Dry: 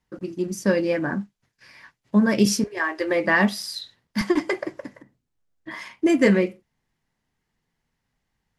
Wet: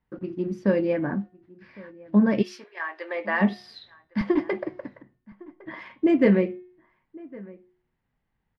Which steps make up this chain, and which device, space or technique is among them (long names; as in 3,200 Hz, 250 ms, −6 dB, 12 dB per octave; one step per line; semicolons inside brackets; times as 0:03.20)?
0:02.41–0:03.40: high-pass filter 1,300 Hz → 600 Hz 12 dB per octave
shout across a valley (high-frequency loss of the air 370 metres; slap from a distant wall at 190 metres, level −22 dB)
hum removal 361.8 Hz, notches 11
dynamic equaliser 1,500 Hz, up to −4 dB, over −40 dBFS, Q 1.3